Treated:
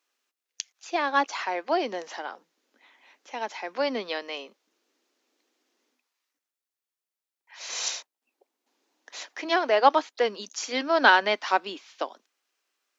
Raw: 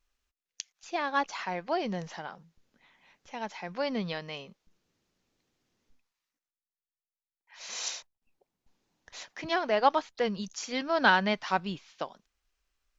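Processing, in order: steep high-pass 260 Hz 48 dB/octave; trim +5 dB

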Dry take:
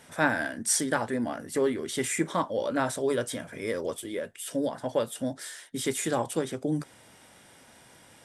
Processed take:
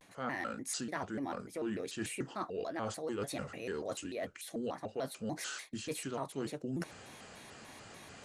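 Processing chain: low-pass 7.7 kHz 12 dB/octave; reverse; compression 5:1, threshold -40 dBFS, peak gain reduction 19 dB; reverse; vibrato with a chosen wave square 3.4 Hz, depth 250 cents; trim +3 dB

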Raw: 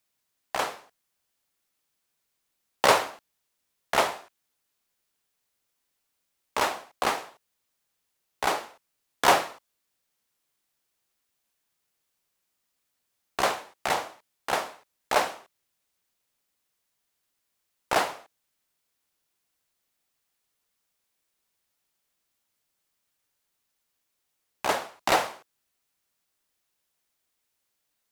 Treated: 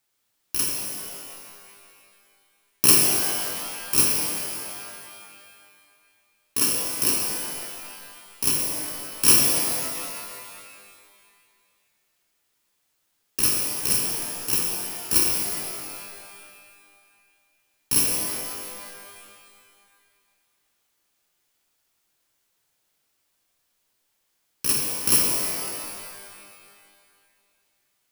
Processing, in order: bit-reversed sample order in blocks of 64 samples; pitch-shifted reverb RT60 2.1 s, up +12 st, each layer -2 dB, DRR 0 dB; trim +2.5 dB

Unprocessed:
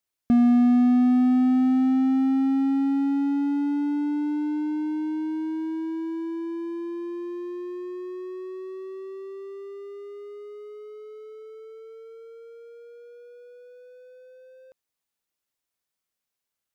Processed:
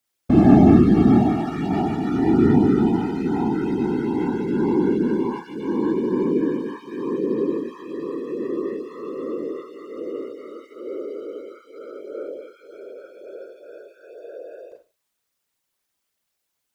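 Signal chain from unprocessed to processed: Schroeder reverb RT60 0.33 s, combs from 33 ms, DRR 0.5 dB; dynamic bell 240 Hz, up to -5 dB, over -28 dBFS, Q 1.8; whisper effect; trim +5 dB

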